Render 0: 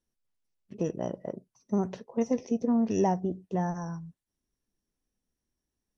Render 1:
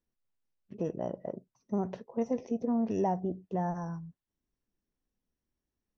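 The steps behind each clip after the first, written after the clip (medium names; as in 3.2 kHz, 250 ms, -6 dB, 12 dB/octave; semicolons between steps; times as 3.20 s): low-pass 2.4 kHz 6 dB/octave; dynamic bell 690 Hz, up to +4 dB, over -40 dBFS, Q 1.4; in parallel at +2 dB: peak limiter -25 dBFS, peak gain reduction 11.5 dB; on the sum: trim -8.5 dB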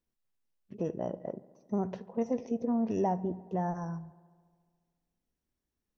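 filtered feedback delay 71 ms, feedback 77%, low-pass 4.2 kHz, level -21 dB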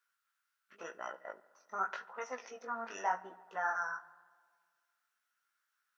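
chorus 0.9 Hz, delay 15 ms, depth 7 ms; resonant high-pass 1.4 kHz, resonance Q 10; trim +7.5 dB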